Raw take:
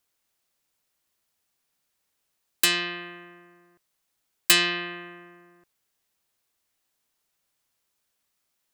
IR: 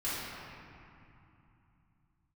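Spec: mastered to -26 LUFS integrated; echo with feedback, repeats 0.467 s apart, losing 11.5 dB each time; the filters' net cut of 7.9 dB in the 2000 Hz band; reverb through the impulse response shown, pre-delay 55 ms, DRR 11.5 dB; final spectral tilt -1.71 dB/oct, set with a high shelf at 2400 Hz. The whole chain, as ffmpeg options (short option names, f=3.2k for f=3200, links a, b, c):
-filter_complex "[0:a]equalizer=f=2k:t=o:g=-8.5,highshelf=f=2.4k:g=-3.5,aecho=1:1:467|934|1401:0.266|0.0718|0.0194,asplit=2[a][b];[1:a]atrim=start_sample=2205,adelay=55[c];[b][c]afir=irnorm=-1:irlink=0,volume=-18.5dB[d];[a][d]amix=inputs=2:normalize=0,volume=3dB"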